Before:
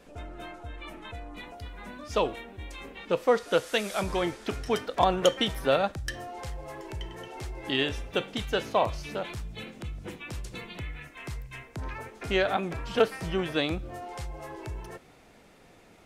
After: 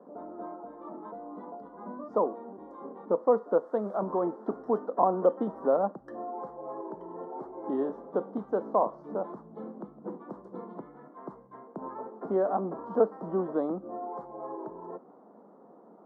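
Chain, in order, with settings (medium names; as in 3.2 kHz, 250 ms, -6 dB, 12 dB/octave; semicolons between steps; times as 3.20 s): elliptic band-pass 200–1100 Hz, stop band 40 dB; in parallel at -1 dB: compression, threshold -35 dBFS, peak gain reduction 17 dB; on the sum: trim -1.5 dB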